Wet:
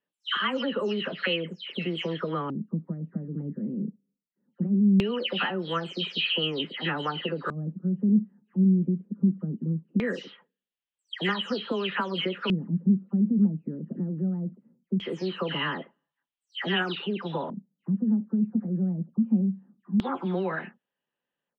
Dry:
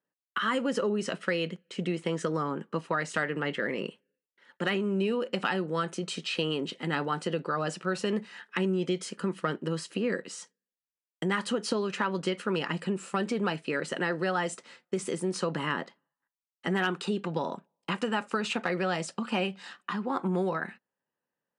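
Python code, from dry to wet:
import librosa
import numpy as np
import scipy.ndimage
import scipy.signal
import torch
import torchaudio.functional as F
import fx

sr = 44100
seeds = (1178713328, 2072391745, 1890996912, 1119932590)

y = fx.spec_delay(x, sr, highs='early', ms=230)
y = fx.high_shelf(y, sr, hz=5800.0, db=-10.0)
y = fx.filter_lfo_lowpass(y, sr, shape='square', hz=0.2, low_hz=210.0, high_hz=3200.0, q=3.8)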